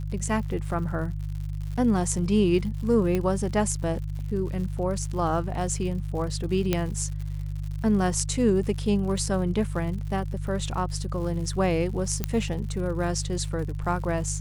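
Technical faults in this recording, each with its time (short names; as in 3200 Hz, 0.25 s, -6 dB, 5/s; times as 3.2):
crackle 110/s -36 dBFS
hum 50 Hz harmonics 3 -31 dBFS
3.15 pop -14 dBFS
6.73 pop -9 dBFS
12.24 pop -11 dBFS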